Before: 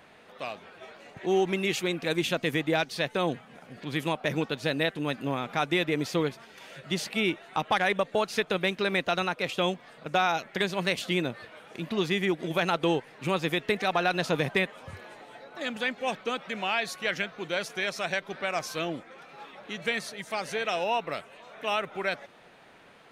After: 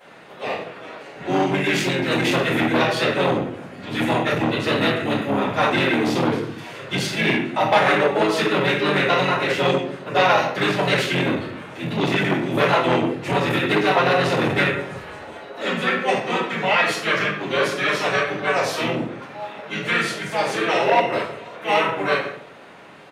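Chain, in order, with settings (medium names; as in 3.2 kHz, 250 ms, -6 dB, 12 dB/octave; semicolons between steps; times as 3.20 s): high-pass 250 Hz 6 dB/octave; simulated room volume 120 m³, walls mixed, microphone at 4.2 m; harmony voices -5 st -1 dB; transformer saturation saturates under 1.4 kHz; trim -5.5 dB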